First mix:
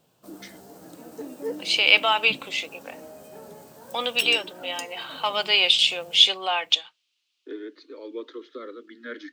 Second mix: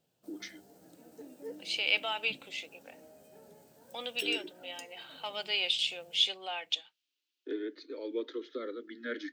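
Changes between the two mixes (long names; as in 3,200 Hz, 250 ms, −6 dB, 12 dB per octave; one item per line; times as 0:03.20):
second voice −11.5 dB
background −12.0 dB
master: add parametric band 1,100 Hz −9 dB 0.45 octaves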